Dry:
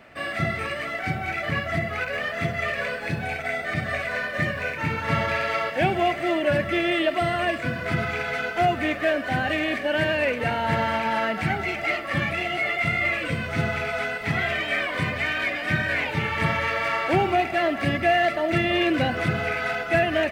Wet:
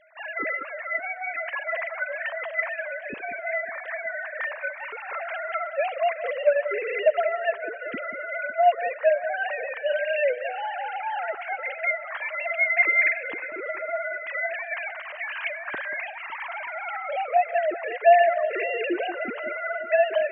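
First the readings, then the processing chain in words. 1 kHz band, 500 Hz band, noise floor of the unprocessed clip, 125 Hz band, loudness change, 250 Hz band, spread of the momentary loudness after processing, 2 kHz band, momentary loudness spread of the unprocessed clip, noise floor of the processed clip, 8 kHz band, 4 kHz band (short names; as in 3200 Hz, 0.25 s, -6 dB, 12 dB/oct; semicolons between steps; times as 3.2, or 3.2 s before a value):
-1.0 dB, +1.0 dB, -32 dBFS, under -35 dB, -2.0 dB, -15.0 dB, 10 LU, -2.0 dB, 5 LU, -38 dBFS, under -35 dB, -11.5 dB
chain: sine-wave speech; echo with dull and thin repeats by turns 0.185 s, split 1500 Hz, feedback 65%, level -12 dB; gain -2 dB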